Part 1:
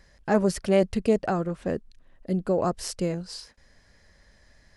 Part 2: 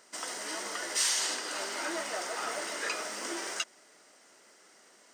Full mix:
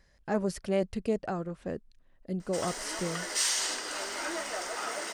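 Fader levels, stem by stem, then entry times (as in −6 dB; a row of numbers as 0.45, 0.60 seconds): −7.5, 0.0 decibels; 0.00, 2.40 seconds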